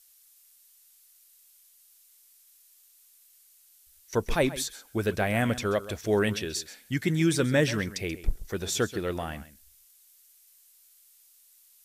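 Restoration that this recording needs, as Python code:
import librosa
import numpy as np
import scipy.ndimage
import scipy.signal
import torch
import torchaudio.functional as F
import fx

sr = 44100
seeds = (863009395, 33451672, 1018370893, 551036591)

y = fx.noise_reduce(x, sr, print_start_s=1.69, print_end_s=2.19, reduce_db=14.0)
y = fx.fix_echo_inverse(y, sr, delay_ms=133, level_db=-15.5)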